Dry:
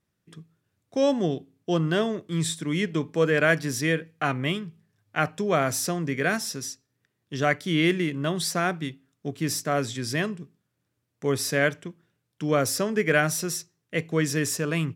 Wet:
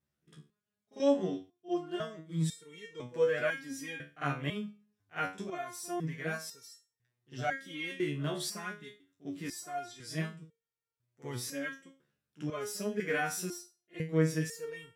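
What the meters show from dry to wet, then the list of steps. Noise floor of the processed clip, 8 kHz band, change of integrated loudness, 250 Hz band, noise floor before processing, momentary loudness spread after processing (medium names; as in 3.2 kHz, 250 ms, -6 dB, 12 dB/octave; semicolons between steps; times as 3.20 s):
under -85 dBFS, -12.0 dB, -9.5 dB, -10.0 dB, -78 dBFS, 17 LU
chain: pre-echo 50 ms -17 dB; resonator arpeggio 2 Hz 72–460 Hz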